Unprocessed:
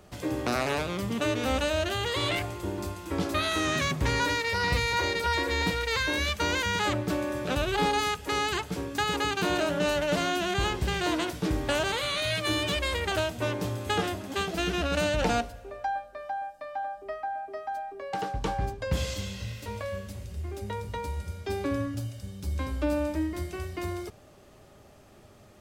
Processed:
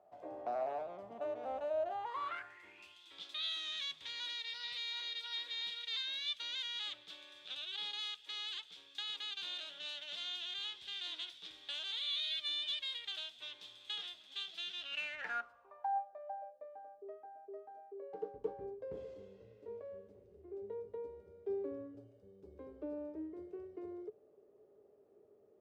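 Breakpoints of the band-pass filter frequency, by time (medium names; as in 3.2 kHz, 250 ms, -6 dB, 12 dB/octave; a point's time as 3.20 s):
band-pass filter, Q 7.7
1.86 s 690 Hz
3.02 s 3.5 kHz
14.81 s 3.5 kHz
15.50 s 1.2 kHz
16.82 s 430 Hz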